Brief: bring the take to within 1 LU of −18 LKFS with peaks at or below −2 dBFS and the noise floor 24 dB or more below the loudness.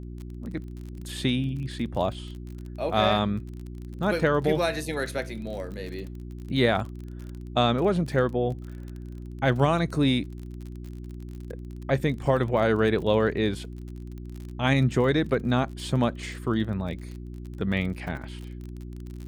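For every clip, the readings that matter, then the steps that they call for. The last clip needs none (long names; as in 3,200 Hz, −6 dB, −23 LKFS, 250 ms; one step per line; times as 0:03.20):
crackle rate 35 per second; mains hum 60 Hz; hum harmonics up to 360 Hz; level of the hum −35 dBFS; integrated loudness −26.5 LKFS; sample peak −9.0 dBFS; target loudness −18.0 LKFS
→ click removal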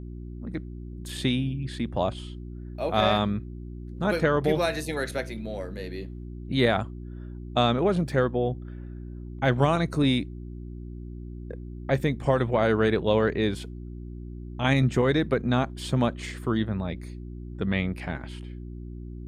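crackle rate 0 per second; mains hum 60 Hz; hum harmonics up to 360 Hz; level of the hum −35 dBFS
→ hum removal 60 Hz, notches 6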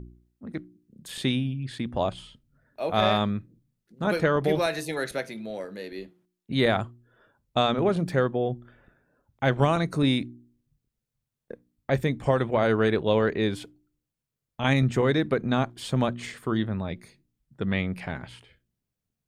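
mains hum none found; integrated loudness −26.5 LKFS; sample peak −8.5 dBFS; target loudness −18.0 LKFS
→ level +8.5 dB
brickwall limiter −2 dBFS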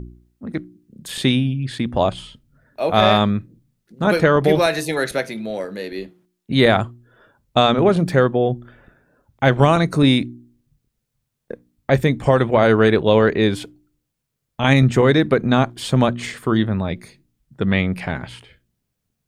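integrated loudness −18.0 LKFS; sample peak −2.0 dBFS; background noise floor −77 dBFS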